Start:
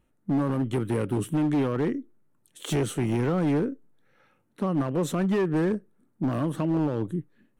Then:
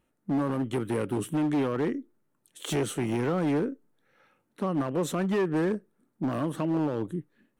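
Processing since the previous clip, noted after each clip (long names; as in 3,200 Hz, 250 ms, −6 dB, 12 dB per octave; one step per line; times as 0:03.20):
low-shelf EQ 140 Hz −10 dB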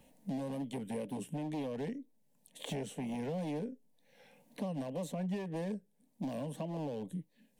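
phaser with its sweep stopped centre 350 Hz, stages 6
tape wow and flutter 76 cents
multiband upward and downward compressor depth 70%
level −7 dB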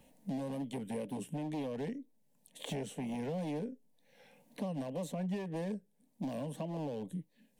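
no processing that can be heard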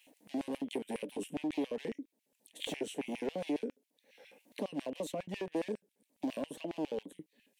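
auto-filter high-pass square 7.3 Hz 330–2,500 Hz
level +1 dB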